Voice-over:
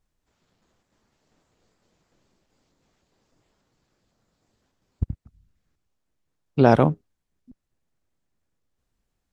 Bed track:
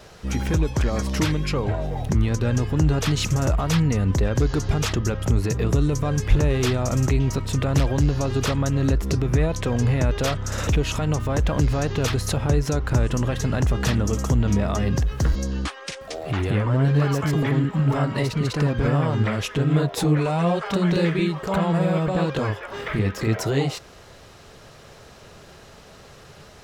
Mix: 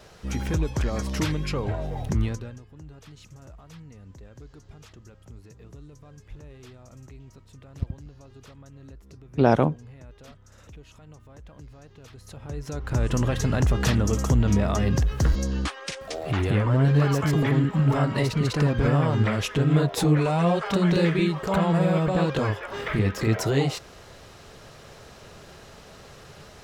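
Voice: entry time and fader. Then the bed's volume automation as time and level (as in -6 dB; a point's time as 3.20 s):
2.80 s, -3.0 dB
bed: 2.26 s -4 dB
2.63 s -25.5 dB
12.06 s -25.5 dB
13.14 s -0.5 dB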